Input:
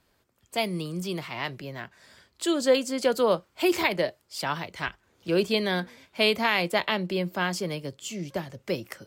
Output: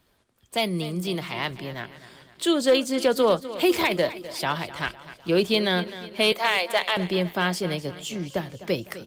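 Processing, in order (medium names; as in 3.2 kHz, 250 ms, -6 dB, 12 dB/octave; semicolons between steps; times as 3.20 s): 6.32–6.97 s: high-pass 480 Hz 24 dB/octave; peaking EQ 3.5 kHz +5 dB 0.41 oct; in parallel at -2 dB: peak limiter -16 dBFS, peak gain reduction 8 dB; on the sum: hard clipper -11 dBFS, distortion -23 dB; on a send: feedback delay 253 ms, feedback 54%, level -15 dB; on the sum: trim -1.5 dB; Opus 32 kbps 48 kHz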